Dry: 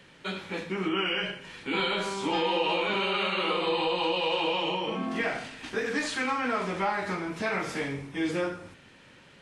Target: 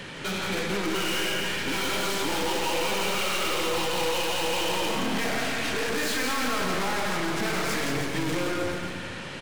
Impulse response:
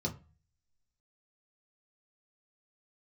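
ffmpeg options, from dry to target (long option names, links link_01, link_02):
-filter_complex "[0:a]apsyclip=22.5dB,aeval=exprs='(tanh(14.1*val(0)+0.3)-tanh(0.3))/14.1':channel_layout=same,asplit=2[link_01][link_02];[link_02]aecho=0:1:170|314.5|437.3|541.7|630.5:0.631|0.398|0.251|0.158|0.1[link_03];[link_01][link_03]amix=inputs=2:normalize=0,volume=-6dB"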